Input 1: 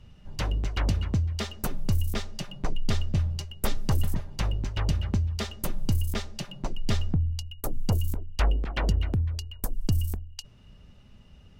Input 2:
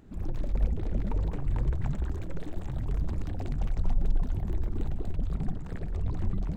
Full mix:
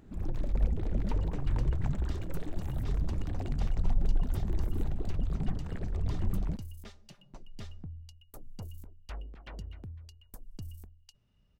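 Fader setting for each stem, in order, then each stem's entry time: -18.0 dB, -1.0 dB; 0.70 s, 0.00 s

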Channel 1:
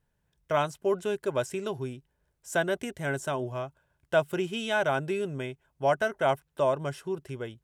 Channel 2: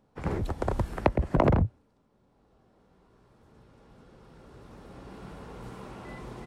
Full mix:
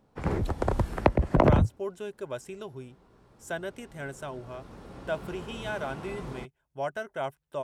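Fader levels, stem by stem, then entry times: -7.5 dB, +2.0 dB; 0.95 s, 0.00 s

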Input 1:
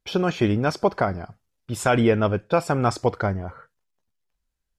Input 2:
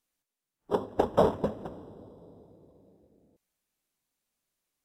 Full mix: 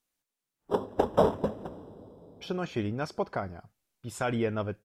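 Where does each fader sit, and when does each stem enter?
-10.5 dB, 0.0 dB; 2.35 s, 0.00 s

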